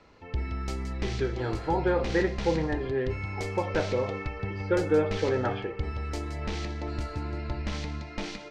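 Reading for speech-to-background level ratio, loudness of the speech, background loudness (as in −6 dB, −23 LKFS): 5.5 dB, −29.5 LKFS, −35.0 LKFS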